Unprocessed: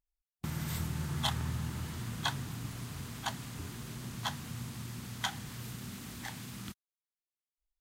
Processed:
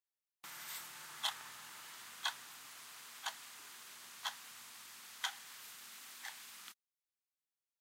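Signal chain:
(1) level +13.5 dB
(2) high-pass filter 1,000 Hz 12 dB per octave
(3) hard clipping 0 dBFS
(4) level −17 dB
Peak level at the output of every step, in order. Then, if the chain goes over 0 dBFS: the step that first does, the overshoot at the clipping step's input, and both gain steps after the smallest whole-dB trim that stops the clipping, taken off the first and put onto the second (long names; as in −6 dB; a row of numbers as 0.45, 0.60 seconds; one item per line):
−3.0, −4.5, −4.5, −21.5 dBFS
no step passes full scale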